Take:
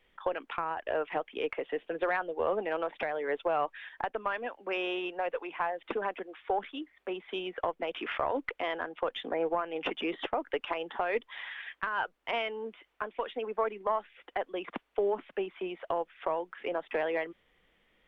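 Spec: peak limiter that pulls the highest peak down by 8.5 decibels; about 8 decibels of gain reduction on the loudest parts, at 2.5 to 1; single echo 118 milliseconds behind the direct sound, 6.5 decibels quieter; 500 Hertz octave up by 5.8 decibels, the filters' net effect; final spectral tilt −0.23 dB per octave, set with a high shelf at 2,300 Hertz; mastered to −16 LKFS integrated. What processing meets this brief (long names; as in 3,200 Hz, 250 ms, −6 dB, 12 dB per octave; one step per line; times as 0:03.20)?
parametric band 500 Hz +6.5 dB
high-shelf EQ 2,300 Hz +8 dB
downward compressor 2.5 to 1, threshold −33 dBFS
brickwall limiter −25.5 dBFS
single-tap delay 118 ms −6.5 dB
level +20 dB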